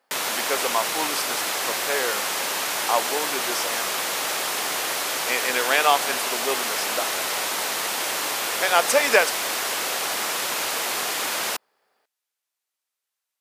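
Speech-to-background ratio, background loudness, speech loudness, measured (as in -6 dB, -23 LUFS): -1.0 dB, -24.0 LUFS, -25.0 LUFS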